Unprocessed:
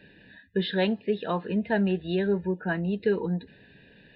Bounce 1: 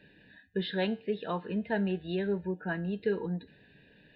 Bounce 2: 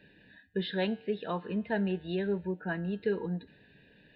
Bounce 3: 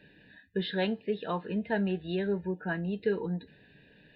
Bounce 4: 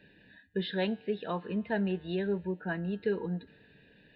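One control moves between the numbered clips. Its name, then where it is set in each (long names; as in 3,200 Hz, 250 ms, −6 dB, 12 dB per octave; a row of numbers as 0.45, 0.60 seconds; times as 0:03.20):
tuned comb filter, decay: 0.45, 0.99, 0.19, 2.1 seconds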